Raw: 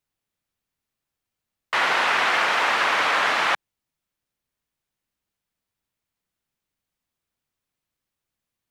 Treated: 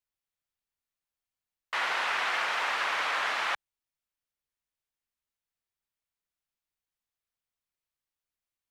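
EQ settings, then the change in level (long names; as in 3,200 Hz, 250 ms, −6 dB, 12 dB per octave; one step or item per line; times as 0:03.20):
parametric band 190 Hz −8 dB 2.6 octaves
−8.0 dB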